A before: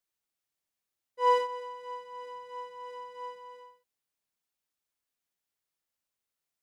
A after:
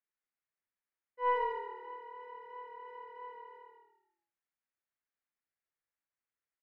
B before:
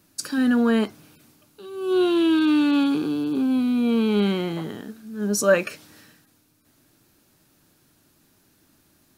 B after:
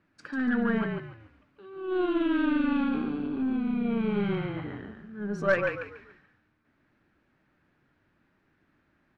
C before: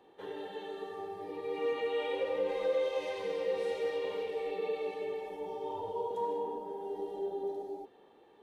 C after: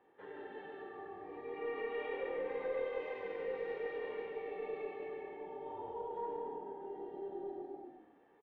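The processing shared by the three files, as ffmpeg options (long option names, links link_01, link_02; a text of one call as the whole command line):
ffmpeg -i in.wav -filter_complex "[0:a]lowpass=frequency=1900:width_type=q:width=2,asplit=5[link_01][link_02][link_03][link_04][link_05];[link_02]adelay=143,afreqshift=-38,volume=-5dB[link_06];[link_03]adelay=286,afreqshift=-76,volume=-14.9dB[link_07];[link_04]adelay=429,afreqshift=-114,volume=-24.8dB[link_08];[link_05]adelay=572,afreqshift=-152,volume=-34.7dB[link_09];[link_01][link_06][link_07][link_08][link_09]amix=inputs=5:normalize=0,aeval=exprs='0.668*(cos(1*acos(clip(val(0)/0.668,-1,1)))-cos(1*PI/2))+0.0531*(cos(4*acos(clip(val(0)/0.668,-1,1)))-cos(4*PI/2))':channel_layout=same,volume=-8.5dB" out.wav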